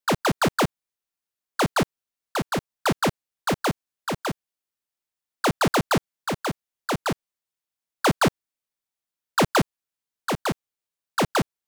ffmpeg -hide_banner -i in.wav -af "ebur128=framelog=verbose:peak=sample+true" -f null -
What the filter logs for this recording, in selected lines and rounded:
Integrated loudness:
  I:         -25.9 LUFS
  Threshold: -36.0 LUFS
Loudness range:
  LRA:         2.2 LU
  Threshold: -47.5 LUFS
  LRA low:   -28.7 LUFS
  LRA high:  -26.4 LUFS
Sample peak:
  Peak:      -16.6 dBFS
True peak:
  Peak:      -15.7 dBFS